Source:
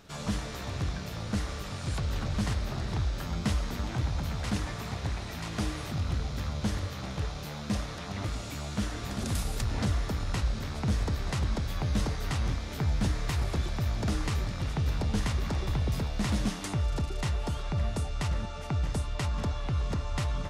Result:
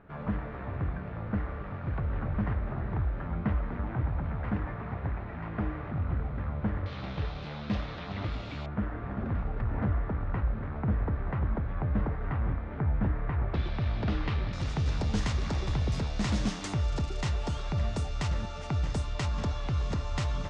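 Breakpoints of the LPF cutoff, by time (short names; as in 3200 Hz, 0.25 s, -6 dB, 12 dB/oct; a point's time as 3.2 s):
LPF 24 dB/oct
1900 Hz
from 6.86 s 3800 Hz
from 8.66 s 1800 Hz
from 13.54 s 3700 Hz
from 14.53 s 7700 Hz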